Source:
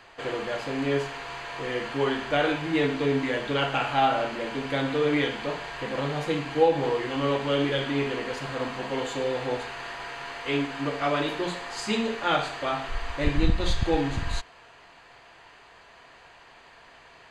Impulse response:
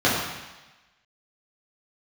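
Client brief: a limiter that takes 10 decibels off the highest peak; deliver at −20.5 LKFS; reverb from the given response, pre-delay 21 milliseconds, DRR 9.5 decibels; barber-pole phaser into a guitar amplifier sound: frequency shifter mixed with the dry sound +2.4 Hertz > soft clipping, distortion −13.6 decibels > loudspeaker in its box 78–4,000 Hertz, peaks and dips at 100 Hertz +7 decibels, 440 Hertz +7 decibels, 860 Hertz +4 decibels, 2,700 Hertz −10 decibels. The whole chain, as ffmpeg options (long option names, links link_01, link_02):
-filter_complex "[0:a]alimiter=limit=-18dB:level=0:latency=1,asplit=2[link_01][link_02];[1:a]atrim=start_sample=2205,adelay=21[link_03];[link_02][link_03]afir=irnorm=-1:irlink=0,volume=-29dB[link_04];[link_01][link_04]amix=inputs=2:normalize=0,asplit=2[link_05][link_06];[link_06]afreqshift=2.4[link_07];[link_05][link_07]amix=inputs=2:normalize=1,asoftclip=threshold=-26.5dB,highpass=78,equalizer=frequency=100:width_type=q:width=4:gain=7,equalizer=frequency=440:width_type=q:width=4:gain=7,equalizer=frequency=860:width_type=q:width=4:gain=4,equalizer=frequency=2700:width_type=q:width=4:gain=-10,lowpass=frequency=4000:width=0.5412,lowpass=frequency=4000:width=1.3066,volume=11dB"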